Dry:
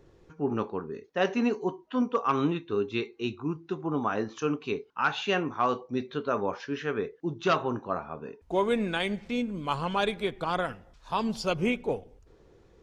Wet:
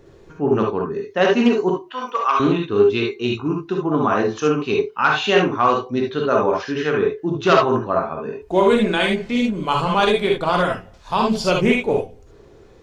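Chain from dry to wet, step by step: 1.87–2.40 s: high-pass 800 Hz 12 dB/octave; gated-style reverb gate 90 ms rising, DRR 0 dB; loudspeaker Doppler distortion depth 0.12 ms; trim +8 dB

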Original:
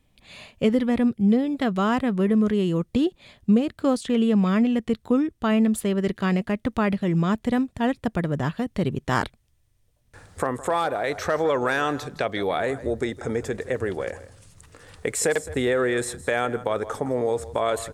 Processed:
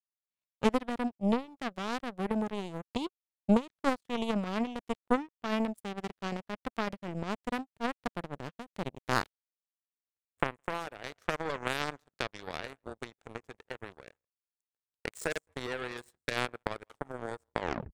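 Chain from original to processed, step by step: tape stop on the ending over 0.36 s; power-law waveshaper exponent 3; trim +1.5 dB

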